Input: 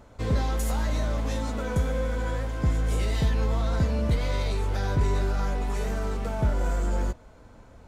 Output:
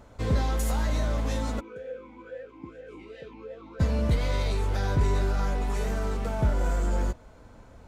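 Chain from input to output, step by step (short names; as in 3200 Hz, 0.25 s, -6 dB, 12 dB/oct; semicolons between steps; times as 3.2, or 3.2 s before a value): 1.59–3.79 vowel sweep e-u 1.6 Hz -> 3.5 Hz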